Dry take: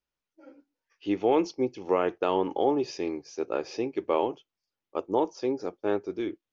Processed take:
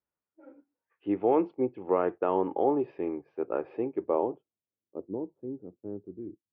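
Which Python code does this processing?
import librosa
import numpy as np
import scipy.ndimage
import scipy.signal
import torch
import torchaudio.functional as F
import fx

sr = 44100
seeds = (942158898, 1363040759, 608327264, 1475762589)

y = scipy.signal.sosfilt(scipy.signal.butter(4, 3200.0, 'lowpass', fs=sr, output='sos'), x)
y = fx.filter_sweep_lowpass(y, sr, from_hz=1400.0, to_hz=210.0, start_s=3.77, end_s=5.36, q=0.79)
y = scipy.signal.sosfilt(scipy.signal.butter(2, 70.0, 'highpass', fs=sr, output='sos'), y)
y = y * 10.0 ** (-1.0 / 20.0)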